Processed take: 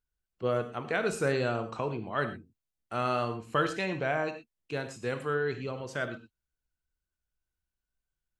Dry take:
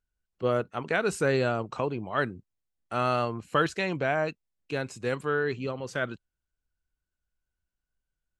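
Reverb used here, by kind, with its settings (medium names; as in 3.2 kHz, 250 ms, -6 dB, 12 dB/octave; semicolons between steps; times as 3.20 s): gated-style reverb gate 140 ms flat, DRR 8 dB; trim -3.5 dB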